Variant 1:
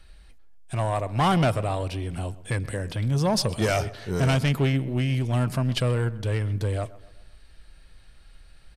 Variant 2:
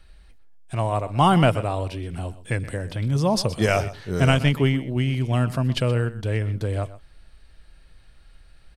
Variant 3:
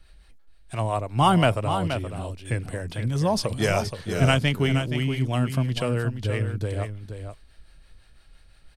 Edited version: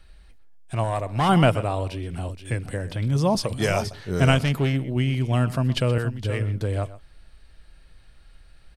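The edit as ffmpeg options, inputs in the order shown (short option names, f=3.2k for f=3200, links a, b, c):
-filter_complex "[0:a]asplit=2[a][b];[2:a]asplit=3[c][d][e];[1:a]asplit=6[f][g][h][i][j][k];[f]atrim=end=0.842[l];[a]atrim=start=0.838:end=1.292[m];[g]atrim=start=1.288:end=2.292[n];[c]atrim=start=2.288:end=2.712[o];[h]atrim=start=2.708:end=3.352[p];[d]atrim=start=3.348:end=3.912[q];[i]atrim=start=3.908:end=4.412[r];[b]atrim=start=4.408:end=4.842[s];[j]atrim=start=4.838:end=5.982[t];[e]atrim=start=5.978:end=6.442[u];[k]atrim=start=6.438[v];[l][m]acrossfade=d=0.004:c1=hsin:c2=hsin[w];[w][n]acrossfade=d=0.004:c1=hsin:c2=hsin[x];[x][o]acrossfade=d=0.004:c1=hsin:c2=hsin[y];[y][p]acrossfade=d=0.004:c1=hsin:c2=hsin[z];[z][q]acrossfade=d=0.004:c1=hsin:c2=hsin[aa];[aa][r]acrossfade=d=0.004:c1=hsin:c2=hsin[ab];[ab][s]acrossfade=d=0.004:c1=hsin:c2=hsin[ac];[ac][t]acrossfade=d=0.004:c1=hsin:c2=hsin[ad];[ad][u]acrossfade=d=0.004:c1=hsin:c2=hsin[ae];[ae][v]acrossfade=d=0.004:c1=hsin:c2=hsin"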